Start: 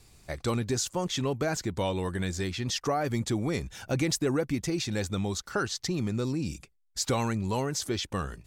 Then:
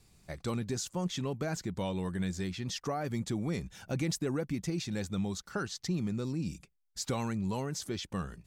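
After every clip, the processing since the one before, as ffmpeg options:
-af "equalizer=f=180:w=2.4:g=8,volume=-7dB"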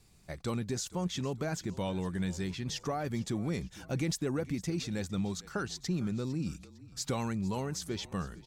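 -filter_complex "[0:a]asplit=4[a][b][c][d];[b]adelay=455,afreqshift=-38,volume=-19dB[e];[c]adelay=910,afreqshift=-76,volume=-26.3dB[f];[d]adelay=1365,afreqshift=-114,volume=-33.7dB[g];[a][e][f][g]amix=inputs=4:normalize=0"

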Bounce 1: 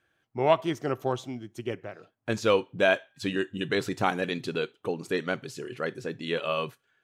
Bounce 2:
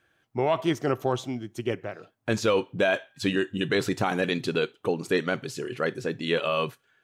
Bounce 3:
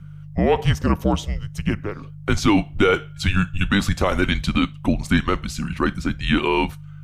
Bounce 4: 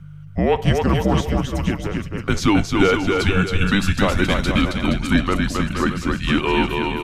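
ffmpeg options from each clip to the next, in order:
-af "alimiter=limit=-18dB:level=0:latency=1:release=18,volume=4.5dB"
-af "aeval=exprs='val(0)+0.00708*(sin(2*PI*50*n/s)+sin(2*PI*2*50*n/s)/2+sin(2*PI*3*50*n/s)/3+sin(2*PI*4*50*n/s)/4+sin(2*PI*5*50*n/s)/5)':c=same,afreqshift=-200,volume=6.5dB"
-af "aecho=1:1:270|472.5|624.4|738.3|823.7:0.631|0.398|0.251|0.158|0.1"

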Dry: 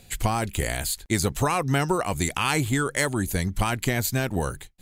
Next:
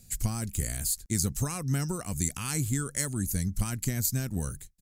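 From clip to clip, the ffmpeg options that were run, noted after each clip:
-af "firequalizer=gain_entry='entry(210,0);entry(350,-9);entry(850,-16);entry(1300,-10);entry(3400,-12);entry(5300,3)':delay=0.05:min_phase=1,volume=-3dB"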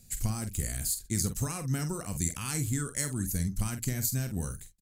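-filter_complex "[0:a]asplit=2[a][b];[b]adelay=47,volume=-9dB[c];[a][c]amix=inputs=2:normalize=0,volume=-2dB"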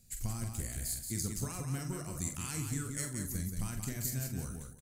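-af "aecho=1:1:44|177|341:0.355|0.531|0.141,volume=-7dB"

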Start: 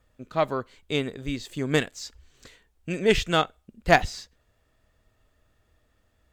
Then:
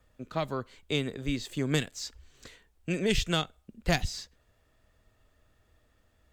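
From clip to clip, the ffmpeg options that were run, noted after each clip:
-filter_complex "[0:a]acrossover=split=220|3000[a][b][c];[b]acompressor=threshold=-29dB:ratio=6[d];[a][d][c]amix=inputs=3:normalize=0"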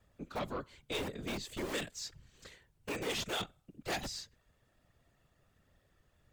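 -filter_complex "[0:a]acrossover=split=250[a][b];[a]aeval=exprs='(mod(42.2*val(0)+1,2)-1)/42.2':c=same[c];[c][b]amix=inputs=2:normalize=0,afftfilt=real='hypot(re,im)*cos(2*PI*random(0))':imag='hypot(re,im)*sin(2*PI*random(1))':win_size=512:overlap=0.75,asoftclip=type=tanh:threshold=-33dB,volume=2.5dB"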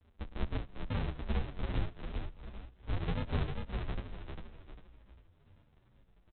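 -filter_complex "[0:a]aresample=8000,acrusher=samples=41:mix=1:aa=0.000001:lfo=1:lforange=41:lforate=0.85,aresample=44100,asplit=6[a][b][c][d][e][f];[b]adelay=399,afreqshift=-31,volume=-4.5dB[g];[c]adelay=798,afreqshift=-62,volume=-13.1dB[h];[d]adelay=1197,afreqshift=-93,volume=-21.8dB[i];[e]adelay=1596,afreqshift=-124,volume=-30.4dB[j];[f]adelay=1995,afreqshift=-155,volume=-39dB[k];[a][g][h][i][j][k]amix=inputs=6:normalize=0,asplit=2[l][m];[m]adelay=9.8,afreqshift=-0.91[n];[l][n]amix=inputs=2:normalize=1,volume=7.5dB"

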